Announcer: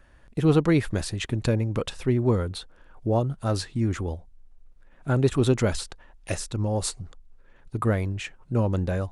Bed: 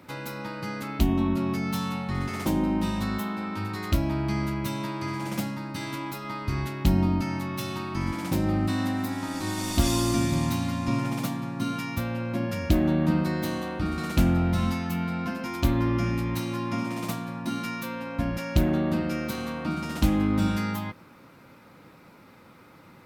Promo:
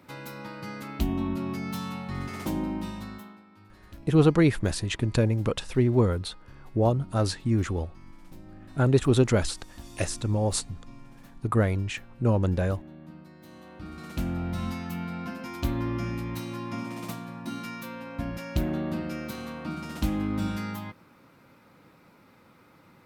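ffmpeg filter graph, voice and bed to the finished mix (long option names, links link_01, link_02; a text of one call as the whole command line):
ffmpeg -i stem1.wav -i stem2.wav -filter_complex "[0:a]adelay=3700,volume=0.5dB[link_01];[1:a]volume=13.5dB,afade=type=out:start_time=2.58:duration=0.86:silence=0.11885,afade=type=in:start_time=13.39:duration=1.43:silence=0.125893[link_02];[link_01][link_02]amix=inputs=2:normalize=0" out.wav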